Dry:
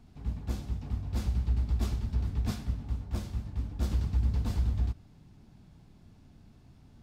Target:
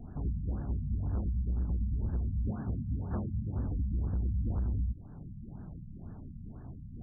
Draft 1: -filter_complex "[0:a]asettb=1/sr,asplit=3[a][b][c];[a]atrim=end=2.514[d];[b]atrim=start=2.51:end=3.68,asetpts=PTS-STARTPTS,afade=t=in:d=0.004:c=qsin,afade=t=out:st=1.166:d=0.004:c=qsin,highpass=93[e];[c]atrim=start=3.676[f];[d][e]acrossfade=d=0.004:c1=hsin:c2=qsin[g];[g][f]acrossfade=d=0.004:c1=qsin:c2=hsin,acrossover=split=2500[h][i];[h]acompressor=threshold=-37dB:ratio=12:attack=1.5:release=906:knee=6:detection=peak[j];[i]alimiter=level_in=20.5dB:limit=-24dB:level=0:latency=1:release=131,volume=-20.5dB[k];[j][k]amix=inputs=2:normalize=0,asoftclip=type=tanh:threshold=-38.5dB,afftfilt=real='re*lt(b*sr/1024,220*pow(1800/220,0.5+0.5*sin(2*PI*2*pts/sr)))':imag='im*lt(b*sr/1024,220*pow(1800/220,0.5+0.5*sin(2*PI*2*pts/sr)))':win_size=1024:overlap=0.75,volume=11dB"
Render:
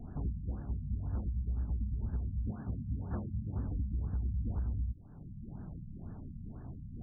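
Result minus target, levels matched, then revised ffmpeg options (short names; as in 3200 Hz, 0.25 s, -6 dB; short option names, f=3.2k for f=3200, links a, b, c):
compressor: peak gain reduction +6.5 dB
-filter_complex "[0:a]asettb=1/sr,asplit=3[a][b][c];[a]atrim=end=2.514[d];[b]atrim=start=2.51:end=3.68,asetpts=PTS-STARTPTS,afade=t=in:d=0.004:c=qsin,afade=t=out:st=1.166:d=0.004:c=qsin,highpass=93[e];[c]atrim=start=3.676[f];[d][e]acrossfade=d=0.004:c1=hsin:c2=qsin[g];[g][f]acrossfade=d=0.004:c1=qsin:c2=hsin,acrossover=split=2500[h][i];[h]acompressor=threshold=-30dB:ratio=12:attack=1.5:release=906:knee=6:detection=peak[j];[i]alimiter=level_in=20.5dB:limit=-24dB:level=0:latency=1:release=131,volume=-20.5dB[k];[j][k]amix=inputs=2:normalize=0,asoftclip=type=tanh:threshold=-38.5dB,afftfilt=real='re*lt(b*sr/1024,220*pow(1800/220,0.5+0.5*sin(2*PI*2*pts/sr)))':imag='im*lt(b*sr/1024,220*pow(1800/220,0.5+0.5*sin(2*PI*2*pts/sr)))':win_size=1024:overlap=0.75,volume=11dB"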